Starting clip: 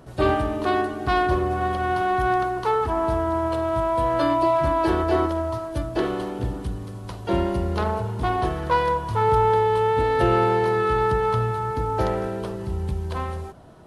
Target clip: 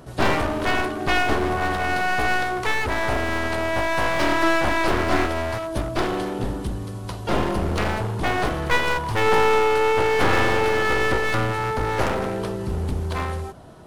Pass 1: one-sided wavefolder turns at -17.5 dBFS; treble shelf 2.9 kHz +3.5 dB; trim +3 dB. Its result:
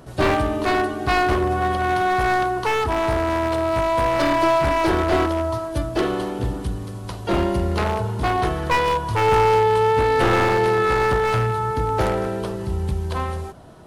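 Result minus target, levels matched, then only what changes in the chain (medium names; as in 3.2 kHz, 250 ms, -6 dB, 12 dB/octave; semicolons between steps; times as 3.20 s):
one-sided wavefolder: distortion -13 dB
change: one-sided wavefolder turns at -25.5 dBFS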